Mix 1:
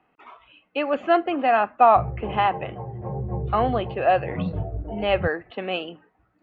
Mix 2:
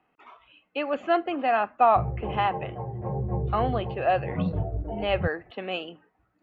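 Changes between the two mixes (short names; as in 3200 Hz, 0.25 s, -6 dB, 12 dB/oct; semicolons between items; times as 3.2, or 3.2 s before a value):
speech -4.5 dB; master: remove air absorption 78 m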